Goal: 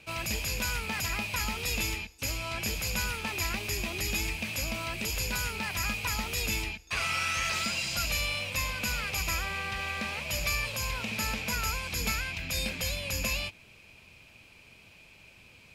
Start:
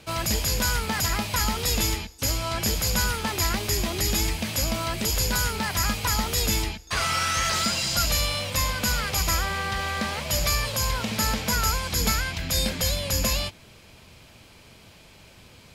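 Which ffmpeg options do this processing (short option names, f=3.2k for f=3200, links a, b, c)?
-af "equalizer=f=2.5k:w=4.3:g=13.5,volume=-8.5dB"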